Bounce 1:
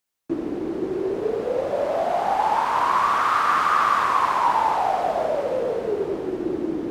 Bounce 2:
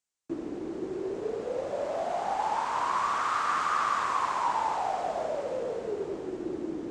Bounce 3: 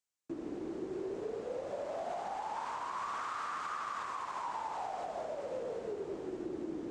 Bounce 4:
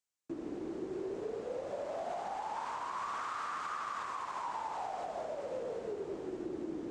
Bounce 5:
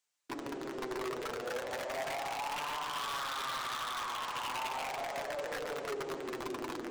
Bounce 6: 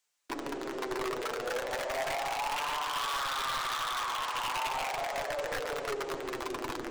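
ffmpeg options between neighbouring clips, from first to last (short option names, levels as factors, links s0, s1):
-af "lowpass=f=7600:t=q:w=2.4,volume=0.376"
-af "alimiter=level_in=1.26:limit=0.0631:level=0:latency=1:release=149,volume=0.794,volume=0.596"
-af anull
-filter_complex "[0:a]aeval=exprs='(mod(44.7*val(0)+1,2)-1)/44.7':c=same,asplit=2[s0][s1];[s1]highpass=f=720:p=1,volume=5.01,asoftclip=type=tanh:threshold=0.0224[s2];[s0][s2]amix=inputs=2:normalize=0,lowpass=f=6800:p=1,volume=0.501,flanger=delay=6.7:depth=1.6:regen=38:speed=0.36:shape=triangular,volume=1.58"
-filter_complex "[0:a]asubboost=boost=3.5:cutoff=110,acrossover=split=270|1300|7300[s0][s1][s2][s3];[s0]aeval=exprs='max(val(0),0)':c=same[s4];[s4][s1][s2][s3]amix=inputs=4:normalize=0,volume=1.68"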